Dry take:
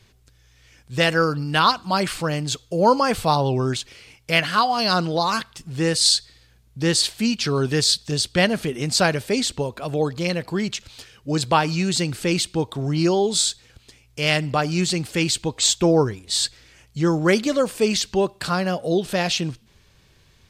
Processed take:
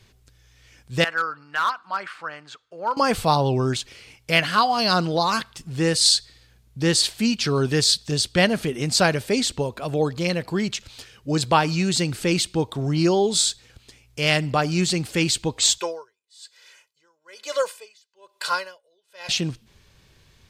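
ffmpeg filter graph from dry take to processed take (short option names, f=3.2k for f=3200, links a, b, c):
-filter_complex "[0:a]asettb=1/sr,asplit=3[a][b][c];[a]atrim=end=1.044[d];[b]atrim=start=1.04:end=2.97,asetpts=PTS-STARTPTS,afade=t=in:d=0.004:c=qsin,afade=t=out:st=1.926:d=0.004:c=qsin,bandpass=f=1.4k:t=q:w=2.3,asoftclip=type=hard:threshold=-16dB[e];[c]atrim=start=2.966[f];[d][e]acrossfade=d=0.004:c1=hsin:c2=qsin[g];[g][f]acrossfade=d=0.004:c1=qsin:c2=hsin,asettb=1/sr,asplit=3[h][i][j];[h]atrim=end=15.784[k];[i]atrim=start=15.78:end=19.29,asetpts=PTS-STARTPTS,afade=t=in:d=0.004:c=qsin,afade=t=out:st=3.506:d=0.004:c=qsin,highpass=770,aecho=1:1:2:0.88,atrim=end_sample=154791,aeval=exprs='val(0)*pow(10,-38*(0.5-0.5*cos(2*PI*1.1*n/s))/20)':c=same[l];[j]atrim=start=19.286[m];[k][l]acrossfade=d=0.004:c1=hsin:c2=qsin[n];[n][m]acrossfade=d=0.004:c1=qsin:c2=hsin"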